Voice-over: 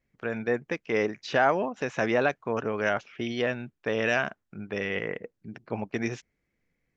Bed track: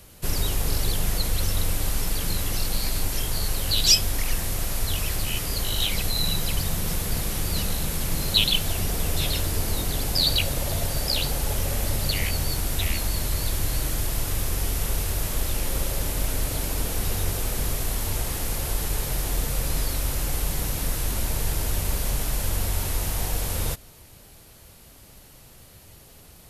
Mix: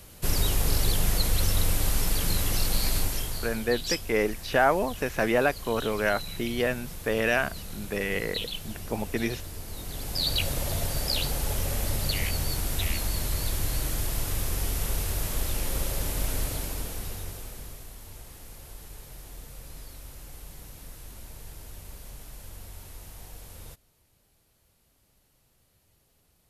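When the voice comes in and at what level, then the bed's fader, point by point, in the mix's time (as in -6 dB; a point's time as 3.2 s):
3.20 s, +1.0 dB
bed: 2.97 s 0 dB
3.74 s -13.5 dB
9.66 s -13.5 dB
10.47 s -3 dB
16.41 s -3 dB
17.93 s -18 dB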